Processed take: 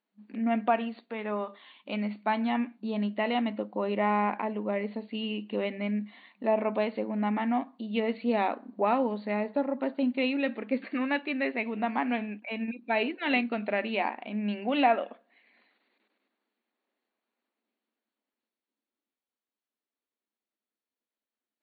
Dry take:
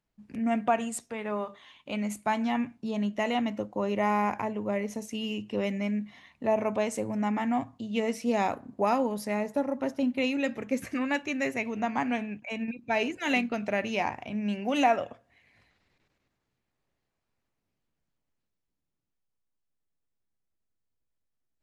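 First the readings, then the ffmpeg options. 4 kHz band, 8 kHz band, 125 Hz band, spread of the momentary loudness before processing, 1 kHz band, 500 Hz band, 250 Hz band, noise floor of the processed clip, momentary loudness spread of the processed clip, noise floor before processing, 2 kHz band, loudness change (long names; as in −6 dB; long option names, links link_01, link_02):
0.0 dB, below −35 dB, can't be measured, 8 LU, 0.0 dB, 0.0 dB, 0.0 dB, below −85 dBFS, 8 LU, −82 dBFS, 0.0 dB, 0.0 dB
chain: -af "afftfilt=real='re*between(b*sr/4096,200,4600)':imag='im*between(b*sr/4096,200,4600)':win_size=4096:overlap=0.75"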